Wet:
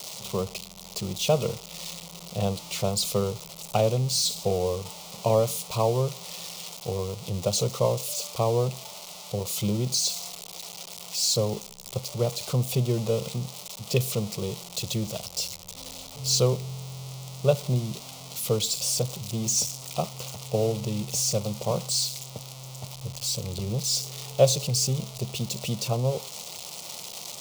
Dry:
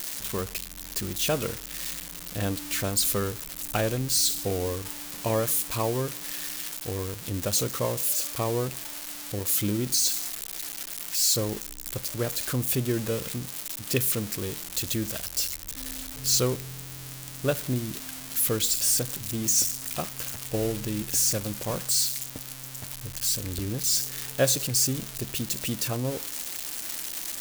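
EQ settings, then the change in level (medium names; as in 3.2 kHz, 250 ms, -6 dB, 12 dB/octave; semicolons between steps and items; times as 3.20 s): three-band isolator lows -20 dB, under 170 Hz, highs -14 dB, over 6.4 kHz; peaking EQ 120 Hz +14 dB 2.3 oct; static phaser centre 690 Hz, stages 4; +4.0 dB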